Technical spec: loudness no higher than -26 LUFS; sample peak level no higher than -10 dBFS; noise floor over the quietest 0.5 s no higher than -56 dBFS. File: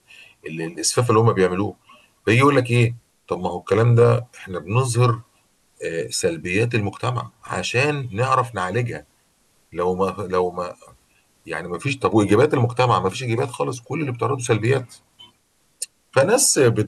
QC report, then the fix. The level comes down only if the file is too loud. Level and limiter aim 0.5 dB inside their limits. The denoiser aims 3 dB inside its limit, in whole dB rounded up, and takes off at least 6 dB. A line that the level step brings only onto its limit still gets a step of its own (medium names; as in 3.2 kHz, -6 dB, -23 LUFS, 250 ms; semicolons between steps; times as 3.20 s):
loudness -20.5 LUFS: fail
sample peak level -4.5 dBFS: fail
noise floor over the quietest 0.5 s -63 dBFS: pass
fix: trim -6 dB